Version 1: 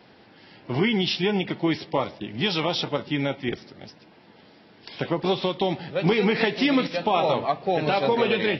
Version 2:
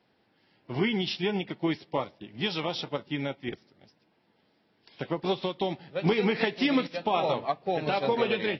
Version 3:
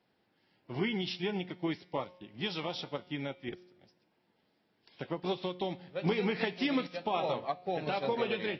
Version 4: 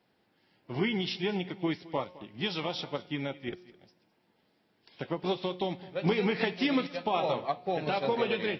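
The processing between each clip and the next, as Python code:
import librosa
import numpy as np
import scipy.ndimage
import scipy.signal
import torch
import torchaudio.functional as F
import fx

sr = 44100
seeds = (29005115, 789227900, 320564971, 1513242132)

y1 = fx.upward_expand(x, sr, threshold_db=-44.0, expansion=1.5)
y1 = y1 * librosa.db_to_amplitude(-3.0)
y2 = fx.comb_fb(y1, sr, f0_hz=180.0, decay_s=1.0, harmonics='all', damping=0.0, mix_pct=50)
y3 = y2 + 10.0 ** (-19.5 / 20.0) * np.pad(y2, (int(212 * sr / 1000.0), 0))[:len(y2)]
y3 = y3 * librosa.db_to_amplitude(3.0)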